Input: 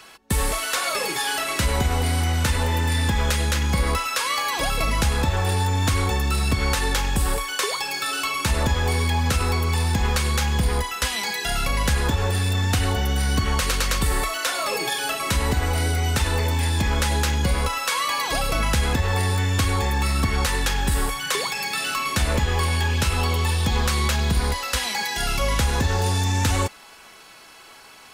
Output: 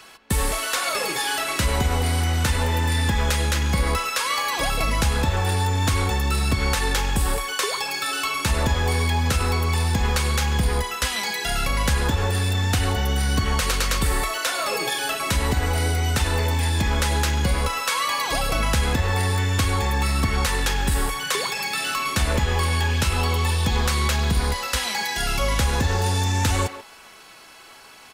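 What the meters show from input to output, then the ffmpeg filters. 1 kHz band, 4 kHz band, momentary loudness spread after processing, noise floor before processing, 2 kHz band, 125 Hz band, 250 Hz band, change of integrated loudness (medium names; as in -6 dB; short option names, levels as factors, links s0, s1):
+0.5 dB, 0.0 dB, 2 LU, -46 dBFS, +0.5 dB, 0.0 dB, 0.0 dB, 0.0 dB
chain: -filter_complex "[0:a]asplit=2[s0][s1];[s1]adelay=140,highpass=300,lowpass=3400,asoftclip=type=hard:threshold=0.106,volume=0.282[s2];[s0][s2]amix=inputs=2:normalize=0"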